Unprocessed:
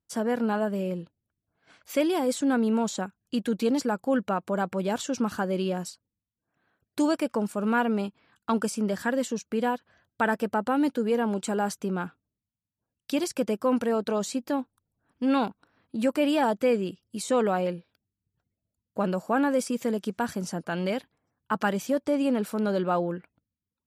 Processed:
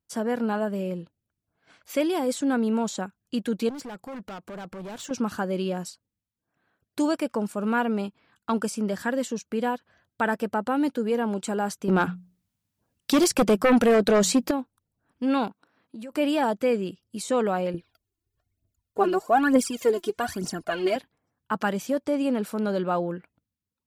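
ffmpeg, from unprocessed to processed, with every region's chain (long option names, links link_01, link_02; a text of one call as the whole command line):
ffmpeg -i in.wav -filter_complex "[0:a]asettb=1/sr,asplit=3[link_01][link_02][link_03];[link_01]atrim=end=3.694[link_04];[link_02]atrim=start=3.69:end=5.11,asetpts=PTS-STARTPTS,afade=type=in:duration=0.004:curve=qsin,afade=type=out:start_time=1.416:duration=0.004:curve=qsin,acompressor=threshold=-33dB:ratio=2:attack=3.2:release=140:knee=1:detection=peak,volume=34.5dB,asoftclip=hard,volume=-34.5dB[link_05];[link_03]atrim=start=5.106[link_06];[link_04][link_05]acrossfade=duration=0.004:curve1=hsin:curve2=qsin[link_07];[link_07][link_06]acrossfade=duration=0.004:curve1=qsin:curve2=hsin,asettb=1/sr,asplit=3[link_08][link_09][link_10];[link_08]atrim=end=11.884[link_11];[link_09]atrim=start=11.88:end=14.51,asetpts=PTS-STARTPTS,afade=type=in:duration=0.004:curve=qsin,afade=type=out:start_time=2.626:duration=0.004:curve=qsin,bandreject=frequency=60:width_type=h:width=6,bandreject=frequency=120:width_type=h:width=6,bandreject=frequency=180:width_type=h:width=6,aeval=exprs='0.2*sin(PI/2*2.24*val(0)/0.2)':channel_layout=same[link_12];[link_10]atrim=start=14.506[link_13];[link_11][link_12]acrossfade=duration=0.004:curve1=hsin:curve2=qsin[link_14];[link_14][link_13]acrossfade=duration=0.004:curve1=qsin:curve2=hsin,asettb=1/sr,asplit=3[link_15][link_16][link_17];[link_15]atrim=end=15.484[link_18];[link_16]atrim=start=15.48:end=16.12,asetpts=PTS-STARTPTS,afade=type=in:duration=0.004:curve=qsin,afade=type=out:start_time=0.636:duration=0.004:curve=qsin,highpass=160,acompressor=threshold=-37dB:ratio=5:attack=3.2:release=140:knee=1:detection=peak[link_19];[link_17]atrim=start=16.116[link_20];[link_18][link_19]acrossfade=duration=0.004:curve1=hsin:curve2=qsin[link_21];[link_21][link_20]acrossfade=duration=0.004:curve1=qsin:curve2=hsin,asettb=1/sr,asplit=3[link_22][link_23][link_24];[link_22]atrim=end=17.744[link_25];[link_23]atrim=start=17.74:end=20.96,asetpts=PTS-STARTPTS,afade=type=in:duration=0.004:curve=qsin,afade=type=out:start_time=3.216:duration=0.004:curve=qsin,aecho=1:1:2.8:0.55,atrim=end_sample=142002,aphaser=in_gain=1:out_gain=1:delay=3.1:decay=0.72:speed=1.1:type=triangular[link_26];[link_24]atrim=start=20.956[link_27];[link_25][link_26]acrossfade=duration=0.004:curve1=hsin:curve2=qsin[link_28];[link_28][link_27]acrossfade=duration=0.004:curve1=qsin:curve2=hsin" out.wav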